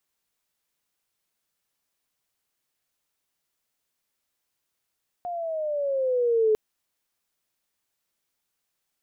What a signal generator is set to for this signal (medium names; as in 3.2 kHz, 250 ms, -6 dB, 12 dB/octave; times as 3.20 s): gliding synth tone sine, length 1.30 s, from 716 Hz, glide -9 st, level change +12 dB, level -17 dB